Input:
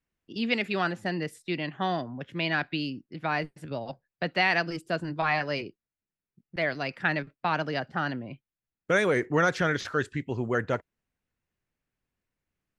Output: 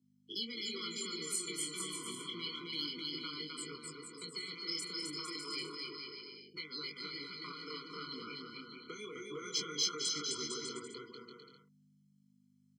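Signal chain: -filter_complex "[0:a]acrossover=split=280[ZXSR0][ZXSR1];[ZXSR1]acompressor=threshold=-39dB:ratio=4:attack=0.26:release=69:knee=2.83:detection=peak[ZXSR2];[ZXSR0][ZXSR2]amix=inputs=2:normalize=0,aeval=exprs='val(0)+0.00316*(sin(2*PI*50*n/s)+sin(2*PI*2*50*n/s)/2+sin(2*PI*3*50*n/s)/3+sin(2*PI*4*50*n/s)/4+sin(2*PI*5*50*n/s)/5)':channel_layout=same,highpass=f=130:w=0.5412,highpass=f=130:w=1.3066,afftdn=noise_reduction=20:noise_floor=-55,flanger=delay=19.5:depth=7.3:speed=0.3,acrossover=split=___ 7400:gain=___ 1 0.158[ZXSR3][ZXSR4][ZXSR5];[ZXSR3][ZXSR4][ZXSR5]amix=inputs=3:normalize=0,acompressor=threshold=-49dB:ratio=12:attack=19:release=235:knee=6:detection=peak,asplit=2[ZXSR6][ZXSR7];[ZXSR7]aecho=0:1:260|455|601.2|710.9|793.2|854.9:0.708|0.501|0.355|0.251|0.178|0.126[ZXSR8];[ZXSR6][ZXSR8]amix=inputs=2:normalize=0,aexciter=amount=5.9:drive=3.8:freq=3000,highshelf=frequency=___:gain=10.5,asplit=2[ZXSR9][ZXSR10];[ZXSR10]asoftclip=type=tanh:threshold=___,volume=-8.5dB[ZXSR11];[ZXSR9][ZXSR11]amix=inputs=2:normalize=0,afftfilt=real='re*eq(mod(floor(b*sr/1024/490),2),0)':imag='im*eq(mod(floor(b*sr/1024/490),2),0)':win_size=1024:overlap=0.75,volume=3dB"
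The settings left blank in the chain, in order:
380, 0.0794, 3600, -30dB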